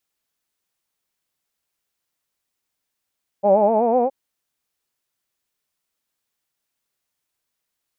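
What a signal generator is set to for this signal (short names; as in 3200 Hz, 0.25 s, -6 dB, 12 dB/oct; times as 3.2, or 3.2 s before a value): formant-synthesis vowel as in hawed, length 0.67 s, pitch 193 Hz, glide +5 st, vibrato 8 Hz, vibrato depth 0.95 st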